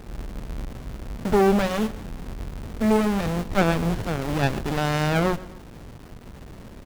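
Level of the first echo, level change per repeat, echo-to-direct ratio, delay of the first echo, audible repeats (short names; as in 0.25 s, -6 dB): -19.0 dB, -6.0 dB, -18.0 dB, 0.126 s, 2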